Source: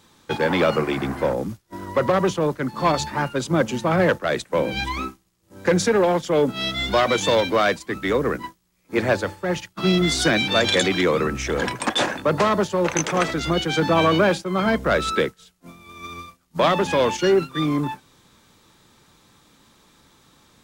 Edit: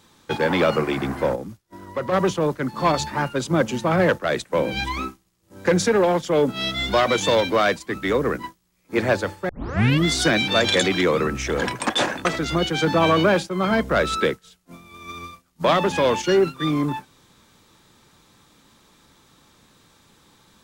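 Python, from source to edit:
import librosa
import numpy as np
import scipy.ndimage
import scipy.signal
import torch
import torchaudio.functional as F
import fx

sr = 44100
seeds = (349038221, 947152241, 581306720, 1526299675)

y = fx.edit(x, sr, fx.clip_gain(start_s=1.36, length_s=0.76, db=-6.5),
    fx.tape_start(start_s=9.49, length_s=0.56),
    fx.cut(start_s=12.25, length_s=0.95), tone=tone)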